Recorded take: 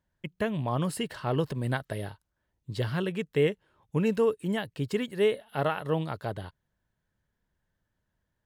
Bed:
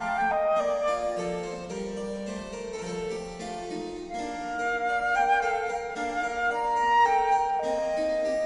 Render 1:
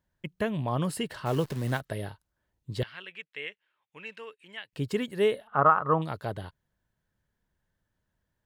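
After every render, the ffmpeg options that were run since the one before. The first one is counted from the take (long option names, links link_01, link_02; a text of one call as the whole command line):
ffmpeg -i in.wav -filter_complex "[0:a]asplit=3[link_01][link_02][link_03];[link_01]afade=type=out:start_time=1.25:duration=0.02[link_04];[link_02]acrusher=bits=8:dc=4:mix=0:aa=0.000001,afade=type=in:start_time=1.25:duration=0.02,afade=type=out:start_time=1.79:duration=0.02[link_05];[link_03]afade=type=in:start_time=1.79:duration=0.02[link_06];[link_04][link_05][link_06]amix=inputs=3:normalize=0,asettb=1/sr,asplit=3[link_07][link_08][link_09];[link_07]atrim=end=2.834[link_10];[link_08]atrim=start=2.83:end=4.73,asetpts=PTS-STARTPTS,afade=type=in:duration=0.004:curve=qsin,afade=type=out:start_time=1.896:duration=0.004:curve=qsin,bandpass=frequency=2400:width_type=q:width=2[link_11];[link_09]atrim=start=4.726[link_12];[link_10][link_11]acrossfade=duration=0.004:curve1=hsin:curve2=qsin[link_13];[link_13][link_12]acrossfade=duration=0.004:curve1=qsin:curve2=hsin,asettb=1/sr,asplit=3[link_14][link_15][link_16];[link_14]atrim=end=5.474[link_17];[link_15]atrim=start=5.47:end=6.02,asetpts=PTS-STARTPTS,afade=type=in:duration=0.004:curve=qsin,afade=type=out:start_time=0.546:duration=0.004:curve=qsin,lowpass=frequency=1200:width_type=q:width=9.1[link_18];[link_16]atrim=start=6.016[link_19];[link_17][link_18]acrossfade=duration=0.004:curve1=hsin:curve2=qsin[link_20];[link_20][link_19]acrossfade=duration=0.004:curve1=qsin:curve2=hsin" out.wav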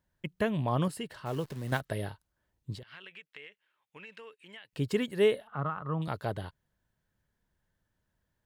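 ffmpeg -i in.wav -filter_complex "[0:a]asettb=1/sr,asplit=3[link_01][link_02][link_03];[link_01]atrim=end=2.754[link_04];[link_02]atrim=start=2.75:end=4.65,asetpts=PTS-STARTPTS,afade=type=in:duration=0.004:curve=qsin,afade=type=out:start_time=1.896:duration=0.004:curve=qsin,acompressor=threshold=-43dB:ratio=12:attack=3.2:release=140:knee=1:detection=peak[link_05];[link_03]atrim=start=4.646[link_06];[link_04][link_05]acrossfade=duration=0.004:curve1=hsin:curve2=qsin[link_07];[link_07][link_06]acrossfade=duration=0.004:curve1=qsin:curve2=hsin,asettb=1/sr,asplit=3[link_08][link_09][link_10];[link_08]atrim=end=5.494[link_11];[link_09]atrim=start=5.49:end=6.08,asetpts=PTS-STARTPTS,afade=type=in:duration=0.004:curve=qsin,afade=type=out:start_time=0.586:duration=0.004:curve=qsin,acrossover=split=230|3000[link_12][link_13][link_14];[link_13]acompressor=threshold=-46dB:ratio=2:attack=3.2:release=140:knee=2.83:detection=peak[link_15];[link_12][link_15][link_14]amix=inputs=3:normalize=0[link_16];[link_10]atrim=start=6.076[link_17];[link_11][link_16]acrossfade=duration=0.004:curve1=hsin:curve2=qsin[link_18];[link_18][link_17]acrossfade=duration=0.004:curve1=qsin:curve2=hsin,asplit=3[link_19][link_20][link_21];[link_19]atrim=end=0.882[link_22];[link_20]atrim=start=0.878:end=1.722,asetpts=PTS-STARTPTS,volume=-6.5dB[link_23];[link_21]atrim=start=1.718[link_24];[link_22][link_23]acrossfade=duration=0.004:curve1=hsin:curve2=hsin[link_25];[link_25][link_24]acrossfade=duration=0.004:curve1=hsin:curve2=hsin" out.wav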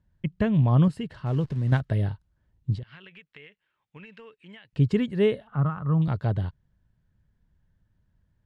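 ffmpeg -i in.wav -af "lowpass=6500,bass=frequency=250:gain=14,treble=frequency=4000:gain=-4" out.wav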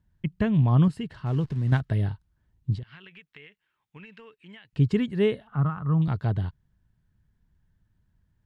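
ffmpeg -i in.wav -af "equalizer=frequency=550:width_type=o:width=0.38:gain=-6.5" out.wav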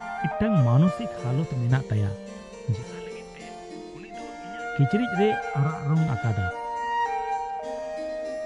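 ffmpeg -i in.wav -i bed.wav -filter_complex "[1:a]volume=-5dB[link_01];[0:a][link_01]amix=inputs=2:normalize=0" out.wav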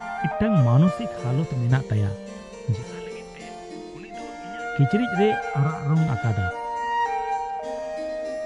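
ffmpeg -i in.wav -af "volume=2dB" out.wav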